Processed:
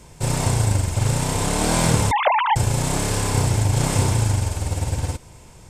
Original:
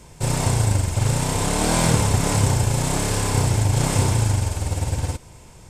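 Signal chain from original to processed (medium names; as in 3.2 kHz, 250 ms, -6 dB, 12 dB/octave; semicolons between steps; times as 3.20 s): 2.11–2.56 s: formants replaced by sine waves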